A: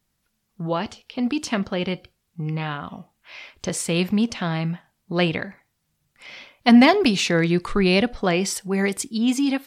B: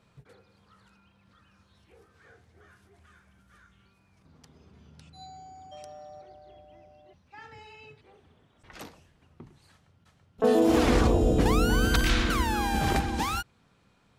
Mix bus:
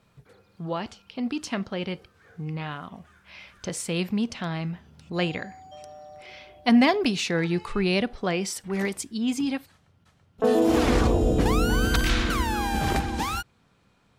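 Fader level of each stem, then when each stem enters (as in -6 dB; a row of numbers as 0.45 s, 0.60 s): -5.5 dB, +1.0 dB; 0.00 s, 0.00 s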